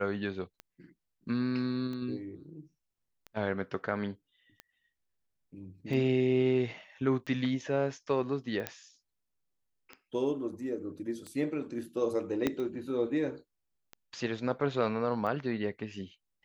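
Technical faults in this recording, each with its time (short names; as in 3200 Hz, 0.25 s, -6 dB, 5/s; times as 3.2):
tick 45 rpm -28 dBFS
8.67 pop -16 dBFS
12.47 pop -15 dBFS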